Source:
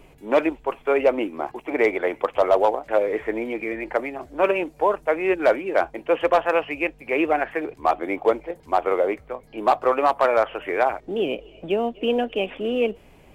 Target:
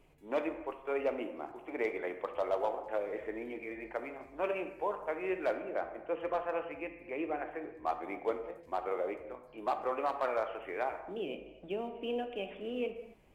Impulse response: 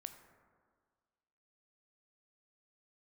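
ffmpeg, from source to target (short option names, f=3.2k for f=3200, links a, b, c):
-filter_complex "[0:a]asettb=1/sr,asplit=3[a][b][c];[a]atrim=end=5.534[d];[b]atrim=start=5.53:end=7.86,asetpts=PTS-STARTPTS,afade=t=in:d=0.004:c=qsin,afade=t=out:st=2.326:d=0.004:c=qsin,highshelf=f=2.2k:g=-8.5[e];[c]atrim=start=7.856[f];[d][e]acrossfade=d=0.004:c1=hsin:c2=qsin[g];[g][f]acrossfade=d=0.004:c1=qsin:c2=hsin[h];[1:a]atrim=start_sample=2205,afade=t=out:st=0.42:d=0.01,atrim=end_sample=18963,asetrate=57330,aresample=44100[i];[h][i]afir=irnorm=-1:irlink=0,volume=-7dB"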